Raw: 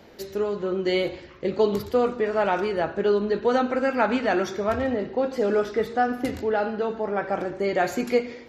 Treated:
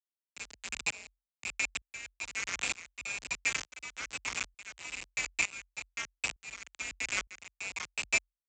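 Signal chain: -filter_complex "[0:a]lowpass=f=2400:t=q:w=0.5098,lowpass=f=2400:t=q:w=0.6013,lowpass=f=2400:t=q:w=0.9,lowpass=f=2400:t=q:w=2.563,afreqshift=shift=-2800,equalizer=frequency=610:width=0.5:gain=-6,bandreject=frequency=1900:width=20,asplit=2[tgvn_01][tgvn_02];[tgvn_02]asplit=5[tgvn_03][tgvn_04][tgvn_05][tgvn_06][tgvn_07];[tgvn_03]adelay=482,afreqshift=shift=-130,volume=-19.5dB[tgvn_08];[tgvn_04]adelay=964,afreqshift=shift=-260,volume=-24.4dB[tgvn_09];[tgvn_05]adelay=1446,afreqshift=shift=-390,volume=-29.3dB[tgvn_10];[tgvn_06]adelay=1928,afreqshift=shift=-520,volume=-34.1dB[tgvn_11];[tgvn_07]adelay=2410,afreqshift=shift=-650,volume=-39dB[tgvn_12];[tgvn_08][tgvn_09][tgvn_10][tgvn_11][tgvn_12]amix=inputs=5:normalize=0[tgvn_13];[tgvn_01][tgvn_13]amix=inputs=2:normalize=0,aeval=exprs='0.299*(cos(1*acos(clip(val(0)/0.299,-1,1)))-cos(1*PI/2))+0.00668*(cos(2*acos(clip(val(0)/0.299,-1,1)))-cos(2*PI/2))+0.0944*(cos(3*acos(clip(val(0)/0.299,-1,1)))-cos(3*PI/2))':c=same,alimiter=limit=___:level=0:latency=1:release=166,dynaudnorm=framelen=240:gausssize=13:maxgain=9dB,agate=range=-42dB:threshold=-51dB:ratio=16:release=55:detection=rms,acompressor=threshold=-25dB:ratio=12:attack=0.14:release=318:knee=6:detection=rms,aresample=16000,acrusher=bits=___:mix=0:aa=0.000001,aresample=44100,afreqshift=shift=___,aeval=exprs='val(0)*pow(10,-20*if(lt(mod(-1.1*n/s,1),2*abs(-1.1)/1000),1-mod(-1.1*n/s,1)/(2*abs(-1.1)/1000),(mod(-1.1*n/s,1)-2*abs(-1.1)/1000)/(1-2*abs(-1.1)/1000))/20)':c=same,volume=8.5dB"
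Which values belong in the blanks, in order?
-14.5dB, 5, 44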